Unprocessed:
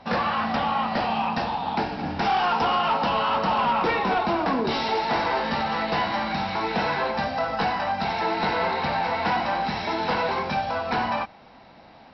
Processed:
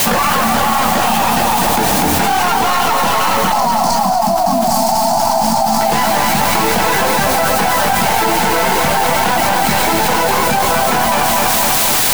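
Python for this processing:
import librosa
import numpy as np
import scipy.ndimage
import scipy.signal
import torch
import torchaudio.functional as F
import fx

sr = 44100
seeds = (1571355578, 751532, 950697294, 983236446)

y = fx.tracing_dist(x, sr, depth_ms=0.15)
y = fx.notch(y, sr, hz=3800.0, q=29.0)
y = fx.dereverb_blind(y, sr, rt60_s=0.67)
y = fx.curve_eq(y, sr, hz=(130.0, 240.0, 450.0, 680.0, 3100.0, 4400.0), db=(0, 6, -26, 12, -29, 7), at=(3.52, 5.81))
y = fx.quant_dither(y, sr, seeds[0], bits=6, dither='triangular')
y = fx.echo_feedback(y, sr, ms=246, feedback_pct=55, wet_db=-5)
y = fx.env_flatten(y, sr, amount_pct=100)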